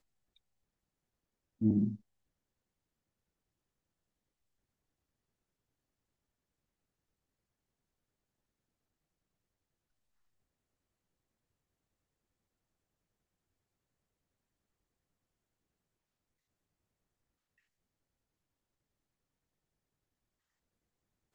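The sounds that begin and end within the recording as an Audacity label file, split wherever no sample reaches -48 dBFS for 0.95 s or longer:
1.610000	1.960000	sound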